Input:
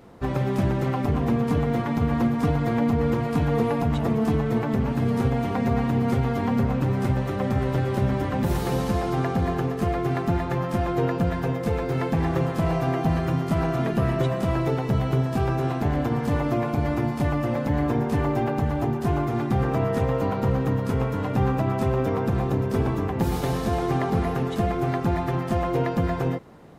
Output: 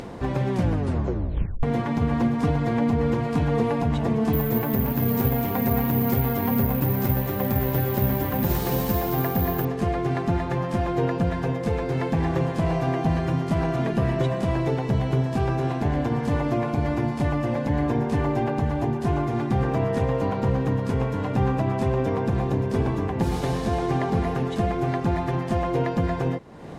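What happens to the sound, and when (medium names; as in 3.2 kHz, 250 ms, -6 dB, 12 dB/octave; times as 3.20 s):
0.52 s: tape stop 1.11 s
4.33–9.65 s: careless resampling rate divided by 3×, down none, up zero stuff
whole clip: low-pass 9.7 kHz 12 dB/octave; upward compressor, threshold -26 dBFS; band-stop 1.3 kHz, Q 12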